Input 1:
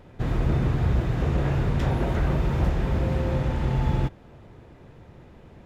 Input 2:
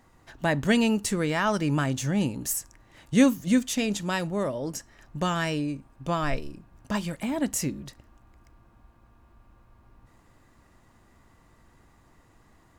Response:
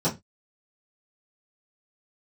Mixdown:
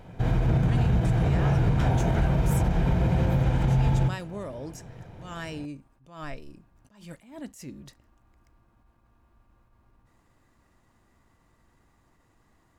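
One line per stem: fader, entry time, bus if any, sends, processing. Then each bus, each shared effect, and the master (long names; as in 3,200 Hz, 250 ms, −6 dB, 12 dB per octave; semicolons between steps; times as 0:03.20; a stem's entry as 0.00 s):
+1.0 dB, 0.00 s, send −21.5 dB, comb filter 1.3 ms, depth 38%
−5.5 dB, 0.00 s, no send, downward compressor 5 to 1, threshold −26 dBFS, peak gain reduction 11.5 dB; level that may rise only so fast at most 110 dB per second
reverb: on, RT60 0.20 s, pre-delay 3 ms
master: brickwall limiter −15 dBFS, peak gain reduction 7.5 dB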